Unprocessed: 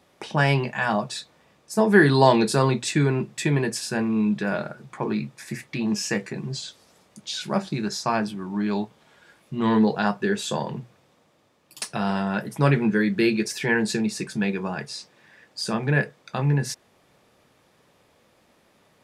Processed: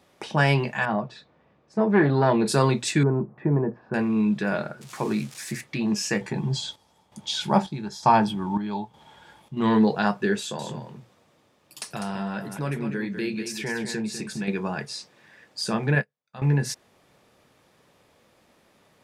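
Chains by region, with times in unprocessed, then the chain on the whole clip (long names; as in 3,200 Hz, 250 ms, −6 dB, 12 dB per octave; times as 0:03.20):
0:00.85–0:02.46: head-to-tape spacing loss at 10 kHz 33 dB + saturating transformer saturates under 510 Hz
0:03.03–0:03.94: low-pass filter 1,100 Hz 24 dB per octave + one half of a high-frequency compander encoder only
0:04.81–0:05.61: spike at every zero crossing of −28.5 dBFS + low-pass filter 8,500 Hz
0:06.21–0:09.57: low-shelf EQ 150 Hz +10.5 dB + hollow resonant body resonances 870/3,300 Hz, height 14 dB, ringing for 25 ms + square-wave tremolo 1.1 Hz, depth 65%, duty 60%
0:10.39–0:14.48: downward compressor 2 to 1, threshold −32 dBFS + single-tap delay 199 ms −8 dB
0:15.95–0:16.42: parametric band 340 Hz −12.5 dB 0.31 octaves + expander for the loud parts 2.5 to 1, over −41 dBFS
whole clip: no processing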